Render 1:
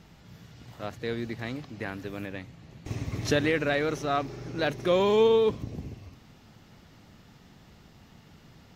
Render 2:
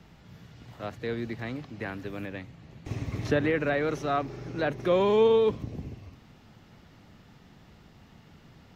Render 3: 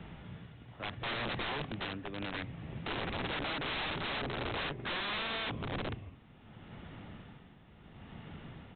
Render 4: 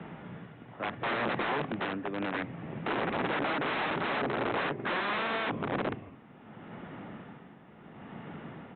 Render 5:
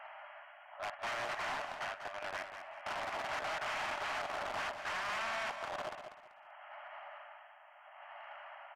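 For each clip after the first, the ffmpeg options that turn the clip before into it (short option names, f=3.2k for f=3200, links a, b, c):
-filter_complex "[0:a]bass=f=250:g=0,treble=f=4k:g=-5,acrossover=split=220|530|2300[a][b][c][d];[d]alimiter=level_in=11dB:limit=-24dB:level=0:latency=1:release=193,volume=-11dB[e];[a][b][c][e]amix=inputs=4:normalize=0"
-af "tremolo=f=0.72:d=0.71,acompressor=threshold=-32dB:ratio=6,aresample=8000,aeval=exprs='(mod(75*val(0)+1,2)-1)/75':c=same,aresample=44100,volume=6dB"
-filter_complex "[0:a]acrossover=split=150 2300:gain=0.0891 1 0.141[a][b][c];[a][b][c]amix=inputs=3:normalize=0,volume=8dB"
-af "afftfilt=real='re*between(b*sr/4096,570,3300)':imag='im*between(b*sr/4096,570,3300)':win_size=4096:overlap=0.75,asoftclip=type=tanh:threshold=-35.5dB,aecho=1:1:193|386|579:0.355|0.0923|0.024"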